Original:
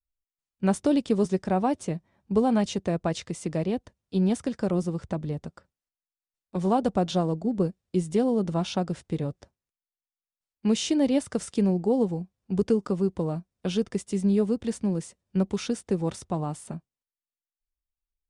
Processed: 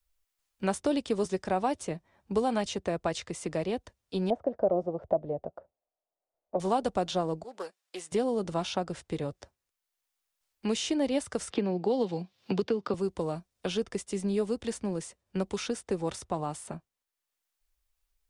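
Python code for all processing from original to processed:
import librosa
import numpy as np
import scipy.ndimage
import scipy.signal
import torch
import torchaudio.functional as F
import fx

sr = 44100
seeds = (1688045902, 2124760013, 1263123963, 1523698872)

y = fx.chain(x, sr, fx.lowpass_res(hz=650.0, q=4.8),
    fx.low_shelf(hz=110.0, db=-11.0), at=(4.3, 6.6))
y = fx.chain(y, sr, fx.highpass(hz=870.0, slope=12),
    fx.doppler_dist(depth_ms=0.13), at=(7.43, 8.12))
y = fx.chain(y, sr, fx.highpass(hz=110.0, slope=24),
    fx.high_shelf_res(hz=5800.0, db=-14.0, q=1.5),
    fx.band_squash(depth_pct=100), at=(11.5, 12.94))
y = fx.peak_eq(y, sr, hz=180.0, db=-9.5, octaves=1.8)
y = fx.band_squash(y, sr, depth_pct=40)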